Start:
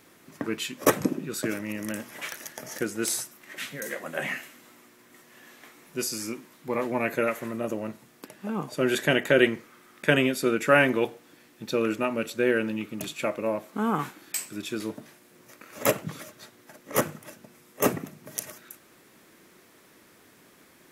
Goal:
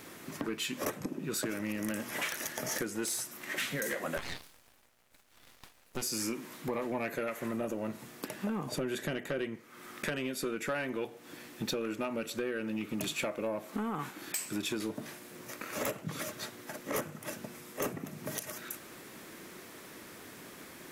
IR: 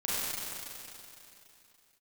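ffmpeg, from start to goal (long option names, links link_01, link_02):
-filter_complex "[0:a]asettb=1/sr,asplit=3[link_01][link_02][link_03];[link_01]atrim=end=8.664[link_04];[link_02]atrim=start=8.66:end=9.56,asetpts=PTS-STARTPTS,afade=type=in:duration=0.004:curve=qsin,afade=type=out:start_time=0.896:duration=0.004:curve=qsin,lowshelf=frequency=380:gain=6.5[link_05];[link_03]atrim=start=9.556[link_06];[link_04][link_05]acrossfade=duration=0.004:curve1=hsin:curve2=qsin[link_07];[link_07][link_06]acrossfade=duration=0.004:curve1=qsin:curve2=hsin,acompressor=threshold=-36dB:ratio=16,asettb=1/sr,asplit=3[link_08][link_09][link_10];[link_08]atrim=end=4.174[link_11];[link_09]atrim=start=4.17:end=6.02,asetpts=PTS-STARTPTS,afade=type=in:duration=0.004:curve=qsin,afade=type=out:start_time=1.846:duration=0.004:curve=qsin,aeval=exprs='0.0794*(cos(1*acos(clip(val(0)/0.0794,-1,1)))-cos(1*PI/2))+0.0141*(cos(6*acos(clip(val(0)/0.0794,-1,1)))-cos(6*PI/2))+0.0112*(cos(7*acos(clip(val(0)/0.0794,-1,1)))-cos(7*PI/2))':channel_layout=same[link_12];[link_10]atrim=start=6.016[link_13];[link_11][link_12]acrossfade=duration=0.004:curve1=hsin:curve2=qsin[link_14];[link_14][link_13]acrossfade=duration=0.004:curve1=qsin:curve2=hsin,asoftclip=type=tanh:threshold=-32.5dB,volume=7dB"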